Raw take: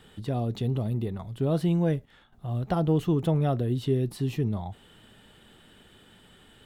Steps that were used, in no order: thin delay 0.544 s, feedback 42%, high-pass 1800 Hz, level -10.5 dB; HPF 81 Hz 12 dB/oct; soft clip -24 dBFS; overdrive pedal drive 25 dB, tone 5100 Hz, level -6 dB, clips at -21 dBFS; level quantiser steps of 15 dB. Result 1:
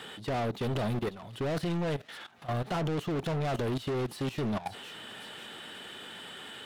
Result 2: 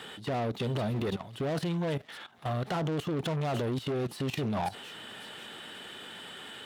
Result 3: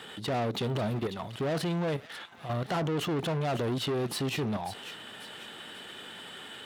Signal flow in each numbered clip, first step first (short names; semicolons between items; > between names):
HPF > overdrive pedal > thin delay > soft clip > level quantiser; soft clip > overdrive pedal > thin delay > level quantiser > HPF; level quantiser > overdrive pedal > thin delay > soft clip > HPF